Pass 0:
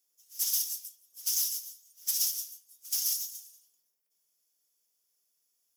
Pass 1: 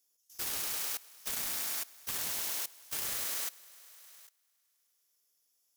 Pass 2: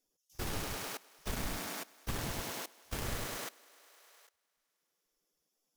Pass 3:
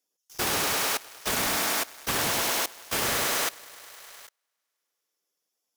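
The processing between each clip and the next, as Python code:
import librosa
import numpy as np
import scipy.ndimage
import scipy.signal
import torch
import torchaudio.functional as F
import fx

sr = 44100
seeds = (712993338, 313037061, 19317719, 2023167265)

y1 = fx.self_delay(x, sr, depth_ms=0.25)
y1 = fx.echo_thinned(y1, sr, ms=102, feedback_pct=74, hz=200.0, wet_db=-4.5)
y1 = fx.level_steps(y1, sr, step_db=20)
y1 = y1 * librosa.db_to_amplitude(4.5)
y2 = fx.spec_gate(y1, sr, threshold_db=-25, keep='strong')
y2 = fx.tilt_eq(y2, sr, slope=-4.0)
y2 = y2 * librosa.db_to_amplitude(4.0)
y3 = fx.highpass(y2, sr, hz=570.0, slope=6)
y3 = fx.leveller(y3, sr, passes=3)
y3 = y3 * librosa.db_to_amplitude(7.0)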